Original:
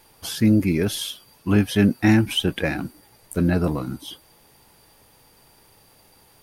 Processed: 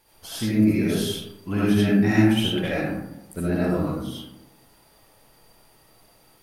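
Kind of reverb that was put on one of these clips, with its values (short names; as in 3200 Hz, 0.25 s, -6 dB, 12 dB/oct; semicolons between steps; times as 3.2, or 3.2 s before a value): digital reverb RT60 0.91 s, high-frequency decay 0.4×, pre-delay 35 ms, DRR -7.5 dB; gain -9 dB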